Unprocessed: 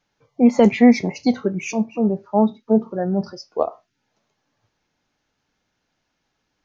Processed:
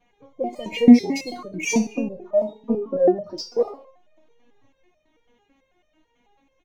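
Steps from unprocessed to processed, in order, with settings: Wiener smoothing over 9 samples; compressor 10:1, threshold -24 dBFS, peak gain reduction 17 dB; bell 1400 Hz -13.5 dB 0.55 oct; feedback echo 65 ms, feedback 50%, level -17.5 dB; maximiser +23 dB; stepped resonator 9.1 Hz 240–610 Hz; gain +4 dB

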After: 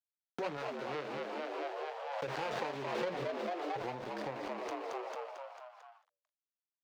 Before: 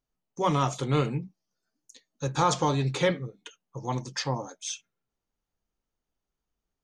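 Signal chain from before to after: median filter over 41 samples; sample gate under -43 dBFS; 0.57–3.04 low shelf 330 Hz -8.5 dB; frequency-shifting echo 0.223 s, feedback 56%, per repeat +82 Hz, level -6.5 dB; compressor 6:1, threshold -44 dBFS, peak gain reduction 19.5 dB; three-band isolator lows -17 dB, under 390 Hz, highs -18 dB, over 5400 Hz; backwards sustainer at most 29 dB/s; gain +10.5 dB

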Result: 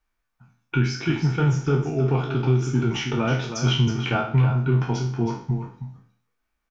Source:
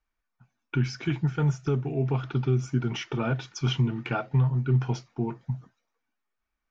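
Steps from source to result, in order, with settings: spectral trails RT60 0.50 s; echo 0.32 s -9 dB; gain +3.5 dB

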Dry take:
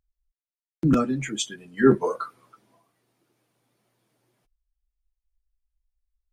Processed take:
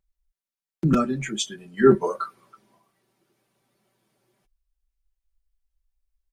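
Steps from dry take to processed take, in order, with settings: comb 5.2 ms, depth 50%

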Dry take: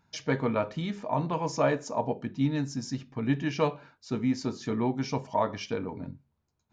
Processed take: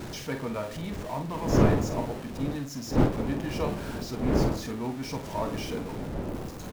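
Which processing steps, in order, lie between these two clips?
zero-crossing step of -30 dBFS; wind noise 350 Hz -23 dBFS; doubler 48 ms -9 dB; gain -7.5 dB

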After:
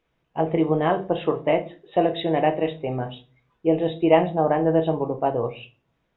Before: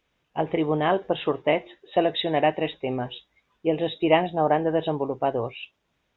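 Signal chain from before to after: high shelf 2600 Hz -10.5 dB; reverb RT60 0.35 s, pre-delay 6 ms, DRR 7 dB; gain +1 dB

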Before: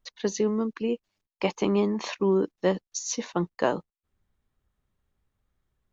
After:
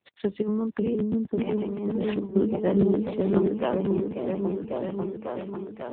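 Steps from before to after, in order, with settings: hard clip -16 dBFS, distortion -21 dB; 2.97–3.7 bell 160 Hz -13.5 dB 0.51 oct; repeats that get brighter 0.544 s, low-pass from 400 Hz, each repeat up 1 oct, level 0 dB; 0.42–2.36 negative-ratio compressor -26 dBFS, ratio -0.5; low shelf 430 Hz +5 dB; crackling interface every 0.13 s, samples 512, repeat, from 0.72; gain -2.5 dB; AMR-NB 7.95 kbps 8000 Hz

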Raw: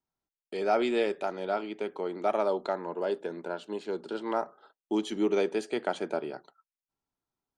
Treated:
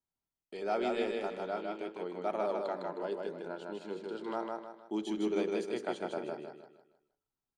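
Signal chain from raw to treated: low shelf 140 Hz +6.5 dB; de-hum 47.84 Hz, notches 12; on a send: feedback echo 0.156 s, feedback 37%, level -3 dB; on the sum: gain -7.5 dB

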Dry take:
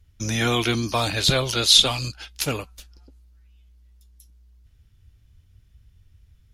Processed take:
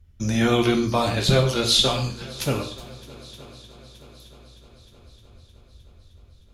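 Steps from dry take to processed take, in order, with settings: tilt shelf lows +4.5 dB, about 1300 Hz; multi-head echo 0.308 s, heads second and third, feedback 56%, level -22 dB; non-linear reverb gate 0.19 s falling, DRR 3 dB; gain -2 dB

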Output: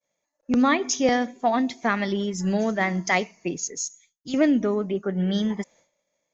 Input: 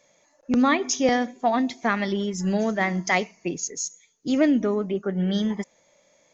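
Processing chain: expander -50 dBFS; 3.84–4.34 bell 470 Hz -14.5 dB 2.8 oct

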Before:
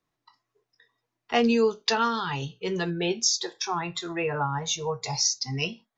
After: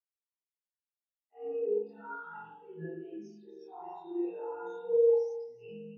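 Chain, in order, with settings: short-time reversal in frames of 47 ms; HPF 180 Hz 24 dB/oct; notch 1100 Hz, Q 19; limiter -26.5 dBFS, peak gain reduction 11.5 dB; chorus voices 2, 0.35 Hz, delay 28 ms, depth 4.3 ms; echo with dull and thin repeats by turns 0.142 s, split 1400 Hz, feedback 63%, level -3.5 dB; spring tank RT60 1.5 s, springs 43 ms, chirp 45 ms, DRR -7 dB; spectral expander 2.5:1

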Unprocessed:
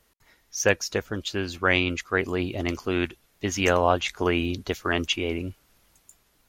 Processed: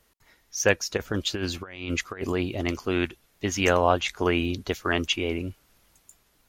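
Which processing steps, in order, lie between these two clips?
0.97–2.33 negative-ratio compressor -29 dBFS, ratio -0.5

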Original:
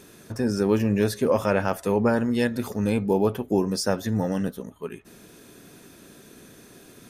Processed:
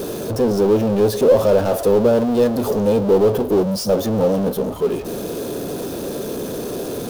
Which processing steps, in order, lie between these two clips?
spectral gain 3.63–3.9, 230–3900 Hz -25 dB; power-law curve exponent 0.35; graphic EQ 500/2000/8000 Hz +11/-10/-5 dB; gain -6 dB

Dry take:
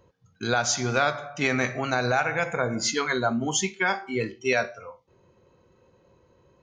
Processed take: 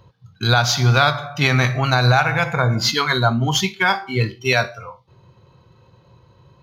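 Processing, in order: median filter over 5 samples; downsampling 32000 Hz; graphic EQ 125/250/500/1000/2000/4000/8000 Hz +11/-5/-5/+4/-3/+9/-6 dB; gain +7 dB

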